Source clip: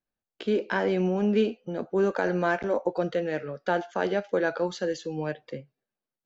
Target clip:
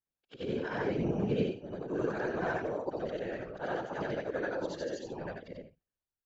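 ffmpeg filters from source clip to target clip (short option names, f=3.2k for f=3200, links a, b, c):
-af "afftfilt=real='re':imag='-im':win_size=8192:overlap=0.75,afftfilt=real='hypot(re,im)*cos(2*PI*random(0))':imag='hypot(re,im)*sin(2*PI*random(1))':win_size=512:overlap=0.75,volume=2.5dB"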